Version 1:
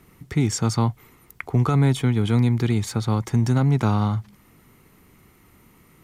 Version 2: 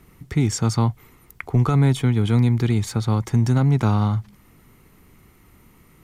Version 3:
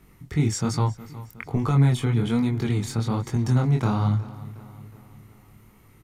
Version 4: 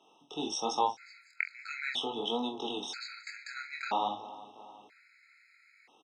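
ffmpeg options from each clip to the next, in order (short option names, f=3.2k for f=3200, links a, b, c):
-af "lowshelf=f=65:g=8.5"
-filter_complex "[0:a]flanger=delay=19.5:depth=7.1:speed=1.2,asplit=2[a][b];[b]adelay=364,lowpass=f=4.8k:p=1,volume=-17dB,asplit=2[c][d];[d]adelay=364,lowpass=f=4.8k:p=1,volume=0.54,asplit=2[e][f];[f]adelay=364,lowpass=f=4.8k:p=1,volume=0.54,asplit=2[g][h];[h]adelay=364,lowpass=f=4.8k:p=1,volume=0.54,asplit=2[i][j];[j]adelay=364,lowpass=f=4.8k:p=1,volume=0.54[k];[a][c][e][g][i][k]amix=inputs=6:normalize=0"
-filter_complex "[0:a]highpass=f=380:w=0.5412,highpass=f=380:w=1.3066,equalizer=f=380:t=q:w=4:g=-7,equalizer=f=550:t=q:w=4:g=-3,equalizer=f=820:t=q:w=4:g=7,equalizer=f=1.2k:t=q:w=4:g=-9,equalizer=f=2.3k:t=q:w=4:g=6,equalizer=f=3.6k:t=q:w=4:g=5,lowpass=f=5.8k:w=0.5412,lowpass=f=5.8k:w=1.3066,asplit=2[a][b];[b]adelay=45,volume=-12dB[c];[a][c]amix=inputs=2:normalize=0,afftfilt=real='re*gt(sin(2*PI*0.51*pts/sr)*(1-2*mod(floor(b*sr/1024/1300),2)),0)':imag='im*gt(sin(2*PI*0.51*pts/sr)*(1-2*mod(floor(b*sr/1024/1300),2)),0)':win_size=1024:overlap=0.75,volume=1.5dB"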